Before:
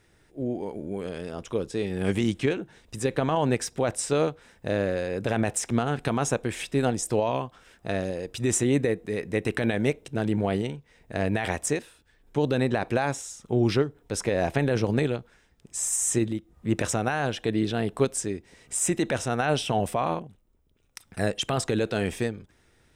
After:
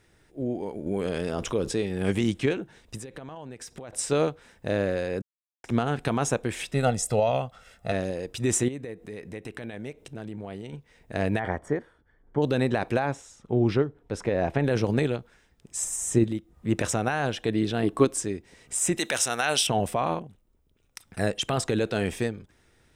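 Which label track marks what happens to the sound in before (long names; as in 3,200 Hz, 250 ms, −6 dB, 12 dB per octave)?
0.860000	1.810000	envelope flattener amount 50%
2.970000	3.930000	downward compressor 16 to 1, threshold −36 dBFS
5.220000	5.640000	silence
6.730000	7.920000	comb filter 1.5 ms
8.680000	10.730000	downward compressor 2.5 to 1, threshold −39 dBFS
11.390000	12.420000	Savitzky-Golay smoothing over 41 samples
12.990000	14.640000	low-pass filter 1,900 Hz 6 dB per octave
15.840000	16.240000	tilt shelving filter lows +5 dB, about 750 Hz
17.830000	18.230000	hollow resonant body resonances 310/1,100 Hz, height 11 dB
18.980000	19.670000	spectral tilt +4 dB per octave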